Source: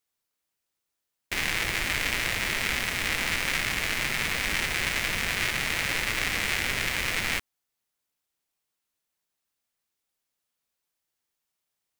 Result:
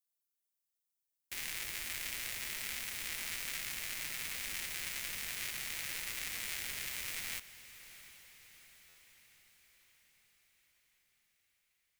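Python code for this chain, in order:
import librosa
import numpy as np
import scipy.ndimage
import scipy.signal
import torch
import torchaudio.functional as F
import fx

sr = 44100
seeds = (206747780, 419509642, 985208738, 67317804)

y = F.preemphasis(torch.from_numpy(x), 0.8).numpy()
y = fx.echo_diffused(y, sr, ms=729, feedback_pct=56, wet_db=-15)
y = fx.buffer_glitch(y, sr, at_s=(8.88,), block=512, repeats=5)
y = y * librosa.db_to_amplitude(-6.5)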